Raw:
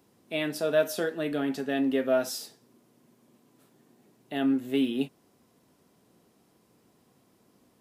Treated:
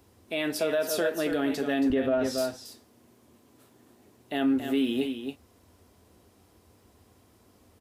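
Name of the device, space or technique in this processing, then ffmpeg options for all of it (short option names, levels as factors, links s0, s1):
car stereo with a boomy subwoofer: -filter_complex "[0:a]asettb=1/sr,asplit=3[s0][s1][s2];[s0]atrim=end=1.904[s3];[s1]atrim=start=1.9:end=2.38,asetpts=PTS-STARTPTS,afade=t=in:d=0.004:c=qsin,afade=t=out:st=0.476:d=0.004:c=qsin,aemphasis=mode=reproduction:type=bsi[s4];[s2]atrim=start=2.376[s5];[s3][s4]acrossfade=d=0.004:c1=hsin:c2=qsin[s6];[s6][s5]acrossfade=d=0.004:c1=qsin:c2=hsin,lowshelf=f=110:t=q:w=3:g=9,aecho=1:1:276:0.355,alimiter=limit=0.0841:level=0:latency=1:release=58,volume=1.58"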